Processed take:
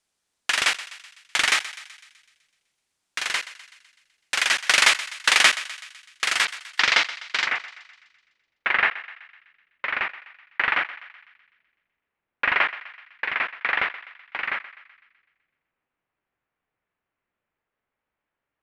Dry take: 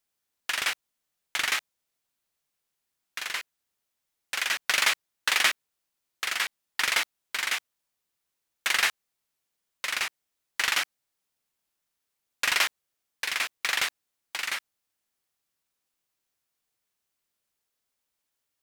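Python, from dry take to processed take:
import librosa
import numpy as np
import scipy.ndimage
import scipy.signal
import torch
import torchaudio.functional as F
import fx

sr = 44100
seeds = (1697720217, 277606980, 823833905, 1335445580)

y = fx.lowpass(x, sr, hz=fx.steps((0.0, 10000.0), (6.45, 5600.0), (7.47, 2300.0)), slope=24)
y = fx.echo_thinned(y, sr, ms=126, feedback_pct=57, hz=760.0, wet_db=-15.0)
y = y * 10.0 ** (6.5 / 20.0)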